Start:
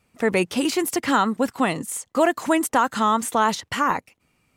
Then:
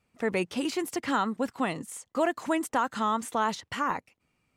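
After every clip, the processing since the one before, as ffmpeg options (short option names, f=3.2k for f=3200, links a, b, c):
-af "highshelf=f=10k:g=-9,volume=-7.5dB"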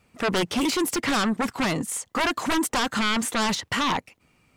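-af "aeval=exprs='0.178*sin(PI/2*3.98*val(0)/0.178)':c=same,volume=-4.5dB"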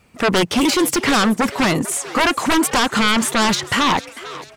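-filter_complex "[0:a]asplit=5[a][b][c][d][e];[b]adelay=446,afreqshift=140,volume=-16.5dB[f];[c]adelay=892,afreqshift=280,volume=-23.1dB[g];[d]adelay=1338,afreqshift=420,volume=-29.6dB[h];[e]adelay=1784,afreqshift=560,volume=-36.2dB[i];[a][f][g][h][i]amix=inputs=5:normalize=0,volume=7.5dB"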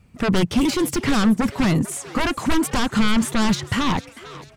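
-af "bass=f=250:g=14,treble=f=4k:g=0,volume=-7.5dB"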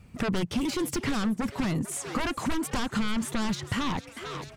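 -af "acompressor=threshold=-32dB:ratio=2.5,volume=1.5dB"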